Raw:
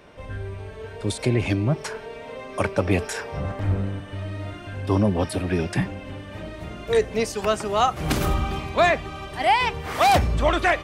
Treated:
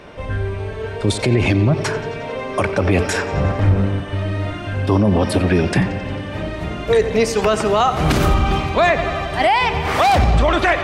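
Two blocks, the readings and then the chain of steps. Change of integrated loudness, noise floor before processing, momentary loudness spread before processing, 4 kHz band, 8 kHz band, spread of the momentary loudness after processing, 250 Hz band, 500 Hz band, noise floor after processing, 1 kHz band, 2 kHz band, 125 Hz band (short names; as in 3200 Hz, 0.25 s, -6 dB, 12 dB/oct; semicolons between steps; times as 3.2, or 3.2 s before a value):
+5.5 dB, -39 dBFS, 16 LU, +5.5 dB, +4.5 dB, 10 LU, +7.0 dB, +6.5 dB, -28 dBFS, +4.5 dB, +6.0 dB, +7.5 dB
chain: high shelf 8600 Hz -9.5 dB; analogue delay 89 ms, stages 4096, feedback 76%, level -17 dB; maximiser +15.5 dB; gain -5.5 dB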